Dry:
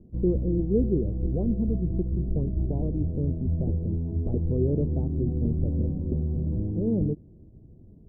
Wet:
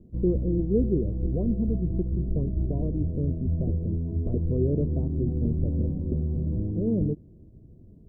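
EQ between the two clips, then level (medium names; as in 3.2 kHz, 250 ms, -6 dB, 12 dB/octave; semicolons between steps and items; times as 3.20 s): Butterworth band-stop 820 Hz, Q 5.7; 0.0 dB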